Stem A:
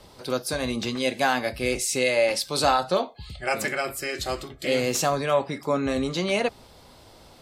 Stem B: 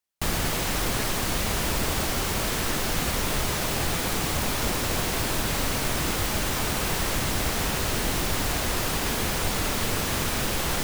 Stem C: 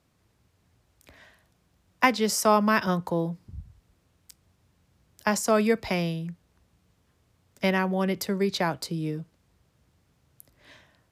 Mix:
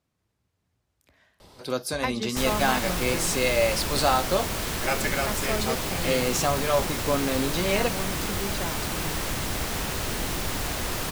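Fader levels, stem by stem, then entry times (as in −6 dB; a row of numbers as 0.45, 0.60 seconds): −1.5, −3.0, −9.0 decibels; 1.40, 2.15, 0.00 seconds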